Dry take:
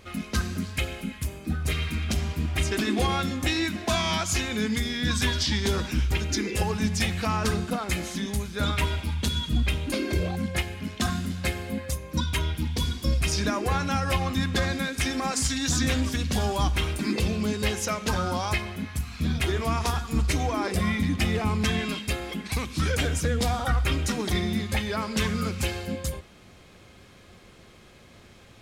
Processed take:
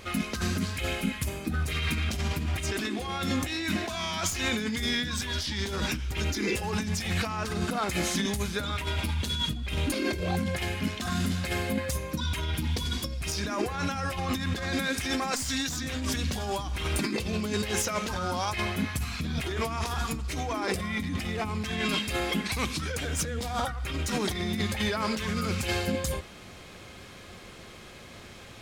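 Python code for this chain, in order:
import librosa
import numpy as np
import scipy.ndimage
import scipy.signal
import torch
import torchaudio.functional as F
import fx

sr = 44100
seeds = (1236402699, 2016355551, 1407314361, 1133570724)

y = fx.tracing_dist(x, sr, depth_ms=0.021)
y = fx.low_shelf(y, sr, hz=440.0, db=-4.0)
y = fx.over_compress(y, sr, threshold_db=-33.0, ratio=-1.0)
y = y * librosa.db_to_amplitude(3.0)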